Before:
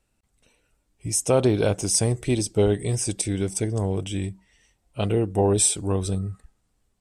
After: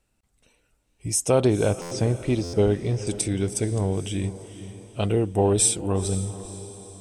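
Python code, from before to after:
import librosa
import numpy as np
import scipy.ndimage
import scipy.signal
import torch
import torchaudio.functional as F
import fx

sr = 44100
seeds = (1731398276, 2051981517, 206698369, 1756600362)

y = fx.air_absorb(x, sr, metres=180.0, at=(1.5, 3.07))
y = fx.echo_diffused(y, sr, ms=488, feedback_pct=48, wet_db=-14.0)
y = fx.buffer_glitch(y, sr, at_s=(1.81, 2.43), block=512, repeats=8)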